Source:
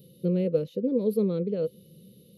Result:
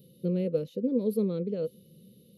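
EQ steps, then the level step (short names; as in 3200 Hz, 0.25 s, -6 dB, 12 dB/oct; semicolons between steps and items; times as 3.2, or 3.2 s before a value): bell 240 Hz +5 dB 0.27 oct; dynamic EQ 8200 Hz, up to +5 dB, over -57 dBFS, Q 0.74; -3.5 dB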